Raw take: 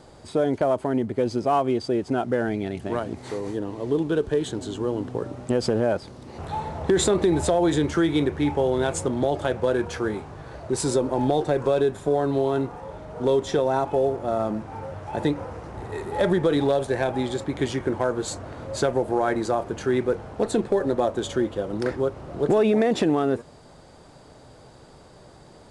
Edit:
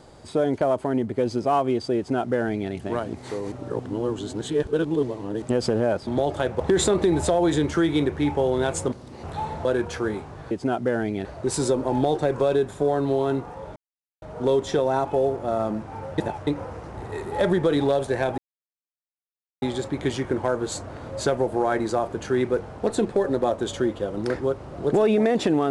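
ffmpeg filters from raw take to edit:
-filter_complex "[0:a]asplit=13[a][b][c][d][e][f][g][h][i][j][k][l][m];[a]atrim=end=3.522[n];[b]atrim=start=3.518:end=5.422,asetpts=PTS-STARTPTS,areverse[o];[c]atrim=start=5.418:end=6.072[p];[d]atrim=start=9.118:end=9.652[q];[e]atrim=start=6.798:end=9.122[r];[f]atrim=start=6.068:end=6.802[s];[g]atrim=start=9.648:end=10.512[t];[h]atrim=start=1.968:end=2.712[u];[i]atrim=start=10.508:end=13.02,asetpts=PTS-STARTPTS,afade=t=out:st=2.508:d=0.004:c=hsin,apad=pad_dur=0.46[v];[j]atrim=start=13.02:end=14.982,asetpts=PTS-STARTPTS,afade=t=in:d=0.004:c=hsin[w];[k]atrim=start=14.978:end=15.272,asetpts=PTS-STARTPTS,areverse[x];[l]atrim=start=15.268:end=17.18,asetpts=PTS-STARTPTS,afade=t=out:st=1.908:d=0.004:c=hsin,apad=pad_dur=1.24[y];[m]atrim=start=17.18,asetpts=PTS-STARTPTS,afade=t=in:d=0.004:c=hsin[z];[n][o]acrossfade=d=0.004:c1=hsin:c2=hsin[aa];[aa][p]acrossfade=d=0.004:c1=hsin:c2=hsin[ab];[ab][q]acrossfade=d=0.004:c1=hsin:c2=hsin[ac];[ac][r]acrossfade=d=0.004:c1=hsin:c2=hsin[ad];[ad][s]acrossfade=d=0.004:c1=hsin:c2=hsin[ae];[ae][t]acrossfade=d=0.004:c1=hsin:c2=hsin[af];[af][u]acrossfade=d=0.004:c1=hsin:c2=hsin[ag];[v][w]concat=n=2:v=0:a=1[ah];[ag][ah]acrossfade=d=0.004:c1=hsin:c2=hsin[ai];[ai][x]acrossfade=d=0.004:c1=hsin:c2=hsin[aj];[y][z]concat=n=2:v=0:a=1[ak];[aj][ak]acrossfade=d=0.004:c1=hsin:c2=hsin"

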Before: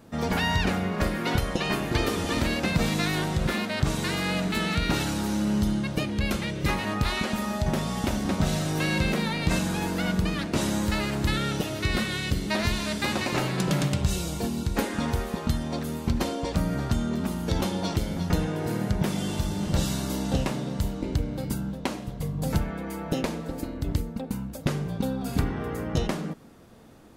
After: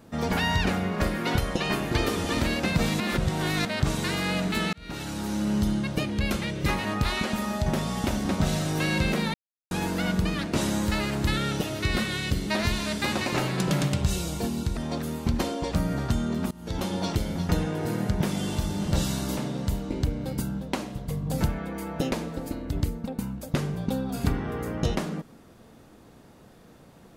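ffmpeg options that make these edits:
-filter_complex "[0:a]asplit=9[a][b][c][d][e][f][g][h][i];[a]atrim=end=3.002[j];[b]atrim=start=2.998:end=3.652,asetpts=PTS-STARTPTS,areverse[k];[c]atrim=start=3.648:end=4.73,asetpts=PTS-STARTPTS,afade=t=out:st=1.078:d=0.004:c=hsin[l];[d]atrim=start=4.73:end=9.34,asetpts=PTS-STARTPTS,afade=t=in:d=1.04:c=qsin,afade=t=out:st=4.606:d=0.004:c=hsin[m];[e]atrim=start=9.34:end=9.71,asetpts=PTS-STARTPTS,volume=0[n];[f]atrim=start=9.71:end=14.772,asetpts=PTS-STARTPTS,afade=t=in:d=0.004:c=hsin[o];[g]atrim=start=15.578:end=17.32,asetpts=PTS-STARTPTS,afade=t=out:st=1.738:d=0.004:c=hsin:silence=0.0794328[p];[h]atrim=start=17.32:end=20.182,asetpts=PTS-STARTPTS,afade=t=in:d=0.44:silence=0.0794328[q];[i]atrim=start=20.488[r];[j][k]acrossfade=d=0.004:c1=hsin:c2=hsin[s];[l][m][n][o]concat=n=4:v=0:a=1[t];[s][t]acrossfade=d=0.004:c1=hsin:c2=hsin[u];[p][q]concat=n=2:v=0:a=1[v];[u][v]acrossfade=d=0.004:c1=hsin:c2=hsin[w];[w][r]acrossfade=d=0.004:c1=hsin:c2=hsin"

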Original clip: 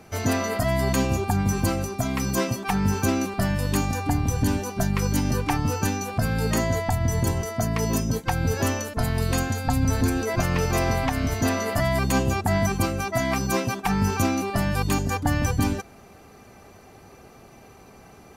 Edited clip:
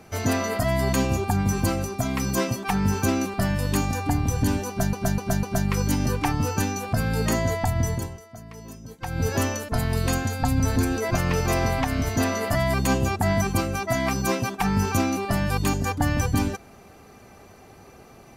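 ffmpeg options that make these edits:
-filter_complex "[0:a]asplit=6[a][b][c][d][e][f];[a]atrim=end=4.932[g];[b]atrim=start=4.678:end=4.932[h];[c]atrim=start=4.678:end=4.932[i];[d]atrim=start=4.678:end=7.54,asetpts=PTS-STARTPTS,afade=t=out:st=2.422:d=0.44:c=qua:silence=0.141254[j];[e]atrim=start=7.54:end=8.06,asetpts=PTS-STARTPTS,volume=-17dB[k];[f]atrim=start=8.06,asetpts=PTS-STARTPTS,afade=t=in:d=0.44:c=qua:silence=0.141254[l];[g][h]acrossfade=d=0.004:c1=hsin:c2=hsin[m];[m][i]acrossfade=d=0.004:c1=hsin:c2=hsin[n];[j][k][l]concat=n=3:v=0:a=1[o];[n][o]acrossfade=d=0.004:c1=hsin:c2=hsin"

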